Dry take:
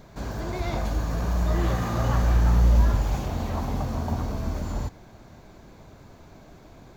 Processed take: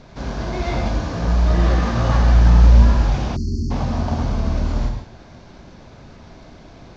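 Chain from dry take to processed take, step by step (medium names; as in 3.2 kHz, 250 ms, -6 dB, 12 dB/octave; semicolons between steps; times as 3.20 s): CVSD coder 32 kbps; gated-style reverb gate 180 ms flat, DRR 2 dB; spectral selection erased 3.36–3.71 s, 410–4200 Hz; trim +4 dB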